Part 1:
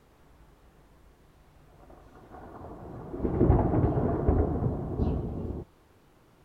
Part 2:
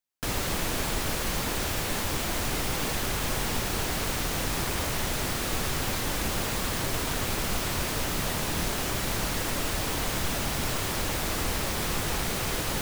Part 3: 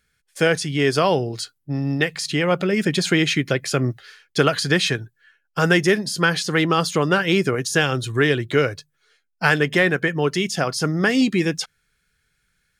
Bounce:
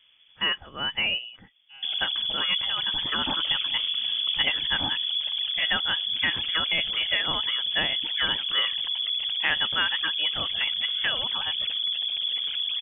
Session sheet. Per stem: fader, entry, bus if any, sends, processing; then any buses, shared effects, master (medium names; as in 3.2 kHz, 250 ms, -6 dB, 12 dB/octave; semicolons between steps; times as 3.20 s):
-0.5 dB, 0.00 s, no send, treble shelf 2.2 kHz -9 dB; auto duck -10 dB, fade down 1.65 s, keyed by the third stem
+2.5 dB, 1.60 s, no send, resonances exaggerated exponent 3; peak limiter -27.5 dBFS, peak gain reduction 6.5 dB
-7.5 dB, 0.00 s, no send, steep high-pass 410 Hz 96 dB/octave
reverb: none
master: frequency inversion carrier 3.4 kHz